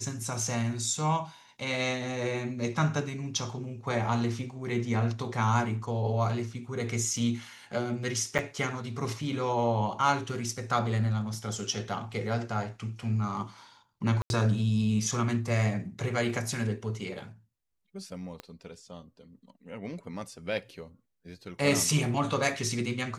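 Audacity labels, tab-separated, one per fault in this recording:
8.380000	8.390000	gap 7.8 ms
14.220000	14.300000	gap 81 ms
18.400000	18.400000	pop -24 dBFS

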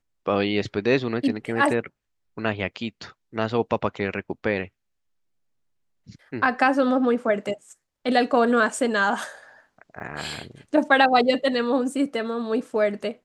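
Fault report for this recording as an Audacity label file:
10.000000	10.010000	gap 5.8 ms

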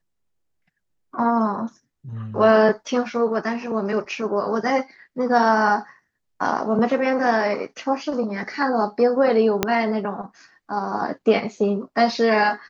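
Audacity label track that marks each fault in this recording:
9.630000	9.630000	pop -3 dBFS

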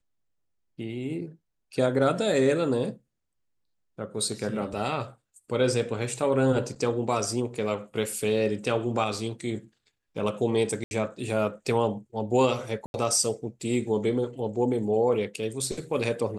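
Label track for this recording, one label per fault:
10.840000	10.910000	gap 71 ms
12.860000	12.940000	gap 81 ms

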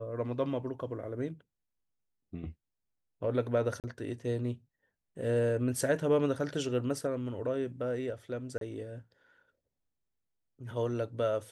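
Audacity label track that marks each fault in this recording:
3.800000	3.840000	gap 38 ms
8.580000	8.610000	gap 32 ms

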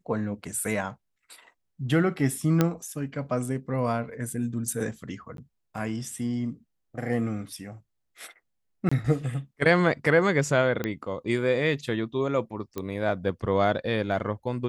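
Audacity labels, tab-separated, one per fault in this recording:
2.610000	2.610000	pop -8 dBFS
5.370000	5.380000	gap 12 ms
8.890000	8.910000	gap 25 ms
10.840000	10.840000	pop -15 dBFS
12.780000	12.780000	pop -18 dBFS

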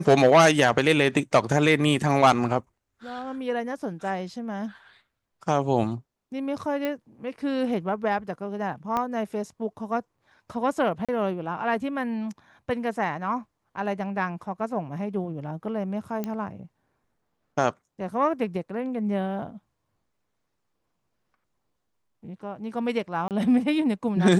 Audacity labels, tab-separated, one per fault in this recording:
6.850000	6.850000	pop -16 dBFS
8.970000	8.970000	pop -14 dBFS
11.050000	11.090000	gap 36 ms
16.240000	16.240000	pop -17 dBFS
23.280000	23.310000	gap 28 ms

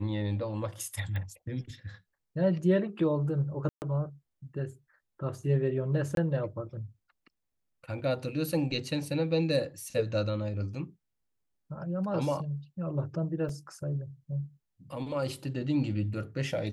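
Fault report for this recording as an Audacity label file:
1.160000	1.160000	pop -26 dBFS
3.690000	3.820000	gap 0.129 s
6.150000	6.170000	gap 22 ms
13.490000	13.490000	gap 3 ms

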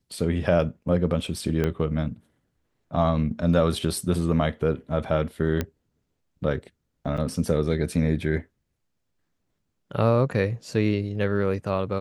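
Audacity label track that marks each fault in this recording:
1.640000	1.640000	pop -13 dBFS
5.610000	5.610000	pop -12 dBFS
7.170000	7.180000	gap 6.2 ms

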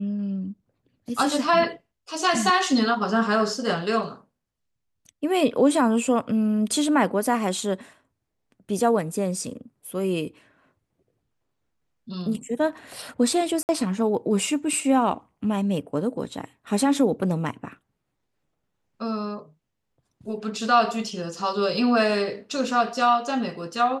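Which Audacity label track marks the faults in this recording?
13.630000	13.690000	gap 59 ms

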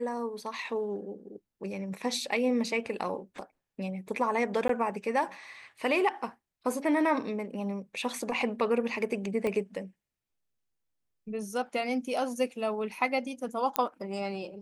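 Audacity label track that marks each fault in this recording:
4.680000	4.690000	gap 13 ms
9.470000	9.470000	pop -20 dBFS
13.760000	13.760000	pop -10 dBFS

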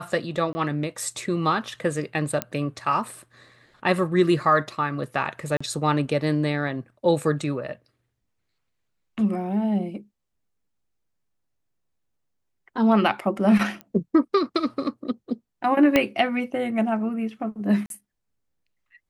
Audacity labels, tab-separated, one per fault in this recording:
0.530000	0.550000	gap 20 ms
2.420000	2.420000	pop -9 dBFS
5.570000	5.610000	gap 35 ms
13.810000	13.810000	pop -22 dBFS
15.960000	15.960000	pop -5 dBFS
17.860000	17.900000	gap 42 ms

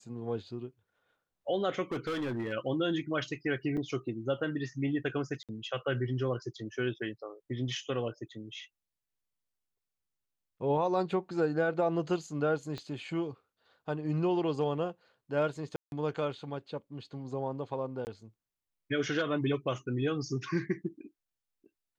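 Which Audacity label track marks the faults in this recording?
1.920000	2.530000	clipped -30.5 dBFS
3.770000	3.780000	gap 5.4 ms
5.430000	5.490000	gap 57 ms
12.780000	12.780000	pop -26 dBFS
15.760000	15.920000	gap 0.161 s
18.050000	18.070000	gap 19 ms

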